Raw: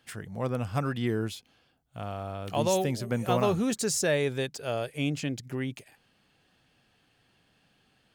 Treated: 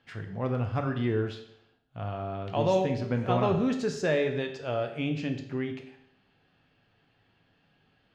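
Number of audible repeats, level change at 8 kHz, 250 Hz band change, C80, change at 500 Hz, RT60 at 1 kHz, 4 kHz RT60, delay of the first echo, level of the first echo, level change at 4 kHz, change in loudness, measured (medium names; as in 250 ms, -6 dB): no echo, -16.0 dB, +1.0 dB, 11.5 dB, +1.0 dB, 0.70 s, 0.70 s, no echo, no echo, -4.5 dB, +0.5 dB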